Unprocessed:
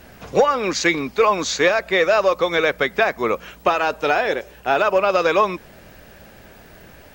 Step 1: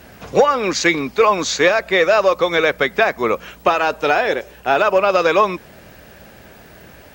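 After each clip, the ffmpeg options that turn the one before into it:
-af "highpass=47,volume=2.5dB"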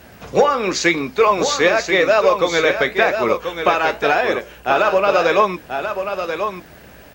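-af "flanger=delay=9.5:depth=8.1:regen=-66:speed=0.92:shape=sinusoidal,aecho=1:1:1036:0.422,volume=3.5dB"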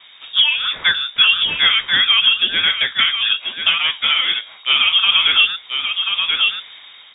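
-af "dynaudnorm=f=220:g=7:m=11.5dB,lowpass=f=3.2k:t=q:w=0.5098,lowpass=f=3.2k:t=q:w=0.6013,lowpass=f=3.2k:t=q:w=0.9,lowpass=f=3.2k:t=q:w=2.563,afreqshift=-3800,volume=-1dB"

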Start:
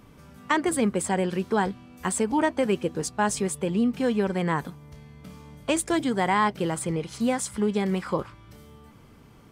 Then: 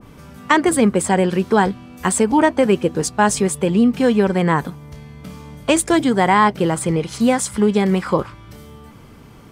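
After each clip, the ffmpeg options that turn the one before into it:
-af "adynamicequalizer=threshold=0.0158:dfrequency=1800:dqfactor=0.7:tfrequency=1800:tqfactor=0.7:attack=5:release=100:ratio=0.375:range=1.5:mode=cutabove:tftype=highshelf,volume=9dB"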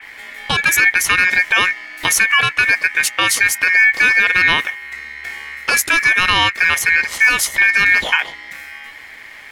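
-filter_complex "[0:a]acrossover=split=160|3000[a][b][c];[b]acompressor=threshold=-16dB:ratio=6[d];[a][d][c]amix=inputs=3:normalize=0,aeval=exprs='val(0)*sin(2*PI*2000*n/s)':c=same,alimiter=level_in=9.5dB:limit=-1dB:release=50:level=0:latency=1,volume=-1dB"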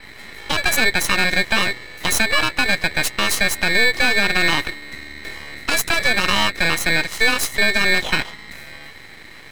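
-af "aeval=exprs='max(val(0),0)':c=same"

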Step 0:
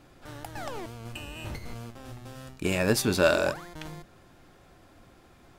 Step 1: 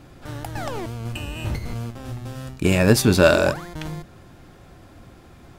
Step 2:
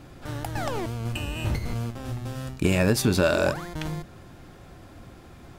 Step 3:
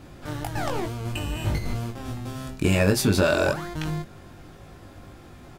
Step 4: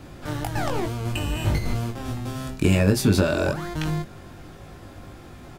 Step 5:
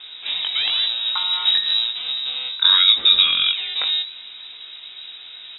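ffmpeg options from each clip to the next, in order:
-af "equalizer=f=91:w=0.4:g=6.5,volume=6dB"
-af "acompressor=threshold=-18dB:ratio=4"
-filter_complex "[0:a]asplit=2[a][b];[b]adelay=20,volume=-4.5dB[c];[a][c]amix=inputs=2:normalize=0"
-filter_complex "[0:a]acrossover=split=370[a][b];[b]acompressor=threshold=-29dB:ratio=2.5[c];[a][c]amix=inputs=2:normalize=0,volume=3dB"
-af "lowpass=f=3.3k:t=q:w=0.5098,lowpass=f=3.3k:t=q:w=0.6013,lowpass=f=3.3k:t=q:w=0.9,lowpass=f=3.3k:t=q:w=2.563,afreqshift=-3900,volume=4dB"

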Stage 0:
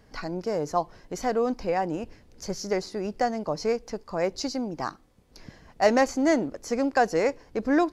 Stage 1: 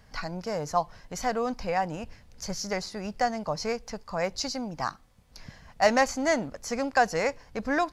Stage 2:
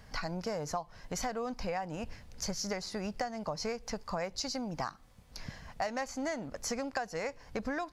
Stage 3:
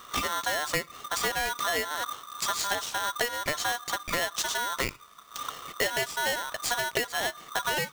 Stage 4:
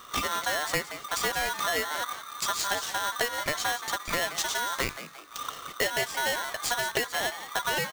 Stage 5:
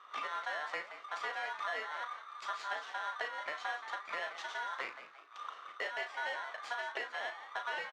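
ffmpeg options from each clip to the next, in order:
-af "equalizer=f=350:t=o:w=0.98:g=-13.5,volume=2.5dB"
-af "acompressor=threshold=-34dB:ratio=12,volume=2dB"
-af "aeval=exprs='val(0)*sgn(sin(2*PI*1200*n/s))':c=same,volume=6.5dB"
-filter_complex "[0:a]asplit=5[a][b][c][d][e];[b]adelay=174,afreqshift=140,volume=-12dB[f];[c]adelay=348,afreqshift=280,volume=-20dB[g];[d]adelay=522,afreqshift=420,volume=-27.9dB[h];[e]adelay=696,afreqshift=560,volume=-35.9dB[i];[a][f][g][h][i]amix=inputs=5:normalize=0"
-filter_complex "[0:a]flanger=delay=2.3:depth=9.9:regen=90:speed=1.9:shape=sinusoidal,highpass=670,lowpass=2.3k,asplit=2[a][b];[b]adelay=37,volume=-8.5dB[c];[a][c]amix=inputs=2:normalize=0,volume=-3dB"

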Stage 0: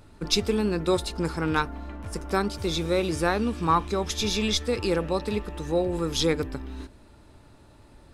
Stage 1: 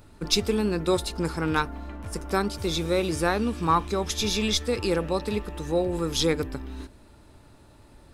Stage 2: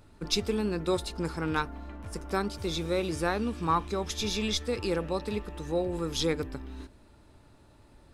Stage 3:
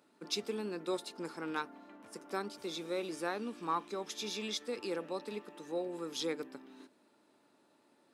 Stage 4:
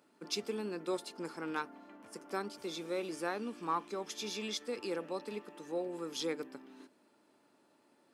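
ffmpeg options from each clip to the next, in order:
-af "highshelf=f=11k:g=7"
-af "highshelf=f=10k:g=-6,volume=-4.5dB"
-af "highpass=f=220:w=0.5412,highpass=f=220:w=1.3066,volume=-7.5dB"
-af "bandreject=f=3.8k:w=14"

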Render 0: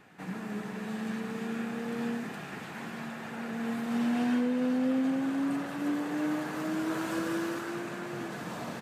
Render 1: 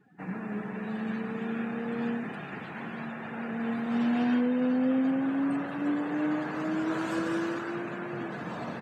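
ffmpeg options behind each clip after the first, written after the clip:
-af "afftdn=nr=21:nf=-50,volume=2dB"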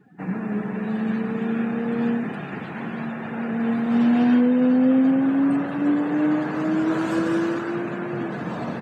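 -af "equalizer=f=190:w=0.32:g=5,volume=4dB"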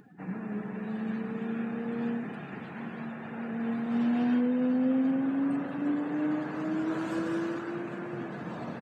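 -af "acompressor=mode=upward:threshold=-39dB:ratio=2.5,aecho=1:1:800:0.133,volume=-9dB"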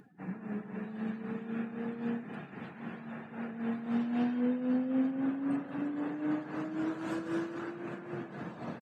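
-af "tremolo=f=3.8:d=0.61,aresample=32000,aresample=44100,volume=-1.5dB"

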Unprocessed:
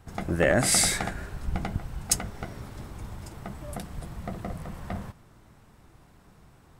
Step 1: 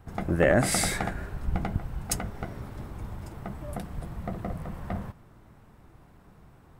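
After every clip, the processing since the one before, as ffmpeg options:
-af "equalizer=f=6.6k:w=0.43:g=-8.5,volume=1.5dB"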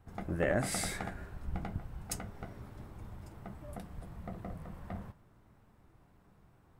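-af "flanger=delay=9.8:depth=1.1:regen=-69:speed=0.32:shape=triangular,volume=-5dB"

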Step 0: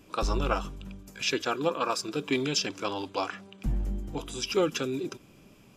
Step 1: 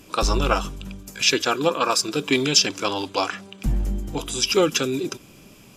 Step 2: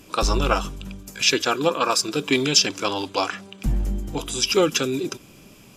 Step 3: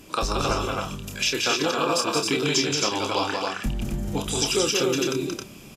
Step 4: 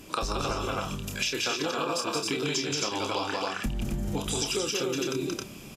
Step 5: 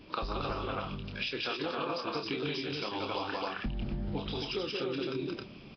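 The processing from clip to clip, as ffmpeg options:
-af "equalizer=f=11k:t=o:w=2.7:g=7,volume=6.5dB"
-af anull
-filter_complex "[0:a]acompressor=threshold=-22dB:ratio=6,asplit=2[a][b];[b]adelay=29,volume=-7dB[c];[a][c]amix=inputs=2:normalize=0,asplit=2[d][e];[e]aecho=0:1:177.8|268.2:0.631|0.708[f];[d][f]amix=inputs=2:normalize=0"
-af "acompressor=threshold=-26dB:ratio=6"
-af "volume=-4.5dB" -ar 11025 -c:a nellymoser

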